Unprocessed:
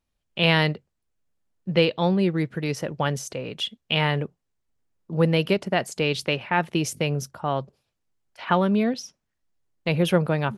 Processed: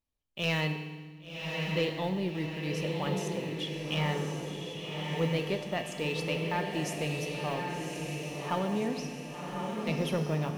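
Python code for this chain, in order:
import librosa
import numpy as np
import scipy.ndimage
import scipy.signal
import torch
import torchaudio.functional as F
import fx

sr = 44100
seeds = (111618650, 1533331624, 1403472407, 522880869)

y = fx.block_float(x, sr, bits=7)
y = fx.notch(y, sr, hz=1500.0, q=5.6)
y = fx.comb_fb(y, sr, f0_hz=85.0, decay_s=1.2, harmonics='odd', damping=0.0, mix_pct=70)
y = 10.0 ** (-20.0 / 20.0) * np.tanh(y / 10.0 ** (-20.0 / 20.0))
y = fx.echo_diffused(y, sr, ms=1122, feedback_pct=53, wet_db=-3.0)
y = fx.rev_fdn(y, sr, rt60_s=1.5, lf_ratio=1.6, hf_ratio=1.0, size_ms=20.0, drr_db=9.0)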